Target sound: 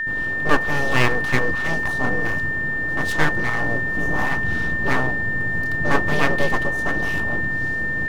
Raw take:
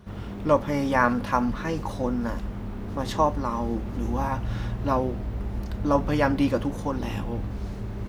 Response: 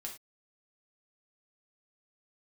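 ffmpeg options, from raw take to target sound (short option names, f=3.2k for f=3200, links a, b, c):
-af "aeval=exprs='abs(val(0))':c=same,aeval=exprs='val(0)+0.0447*sin(2*PI*1800*n/s)':c=same,volume=5dB"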